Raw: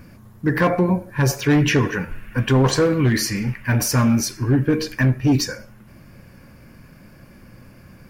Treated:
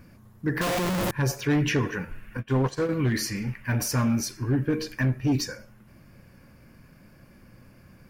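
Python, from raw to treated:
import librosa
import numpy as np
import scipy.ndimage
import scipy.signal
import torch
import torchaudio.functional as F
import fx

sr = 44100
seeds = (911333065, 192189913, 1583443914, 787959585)

y = fx.clip_1bit(x, sr, at=(0.61, 1.11))
y = fx.upward_expand(y, sr, threshold_db=-28.0, expansion=2.5, at=(2.37, 2.89))
y = y * 10.0 ** (-7.0 / 20.0)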